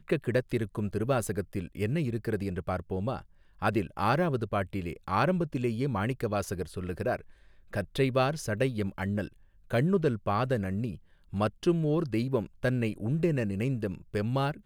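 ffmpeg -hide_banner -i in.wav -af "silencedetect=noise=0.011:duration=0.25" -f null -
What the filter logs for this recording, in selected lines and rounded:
silence_start: 3.21
silence_end: 3.62 | silence_duration: 0.41
silence_start: 7.21
silence_end: 7.73 | silence_duration: 0.52
silence_start: 9.27
silence_end: 9.70 | silence_duration: 0.43
silence_start: 10.96
silence_end: 11.33 | silence_duration: 0.37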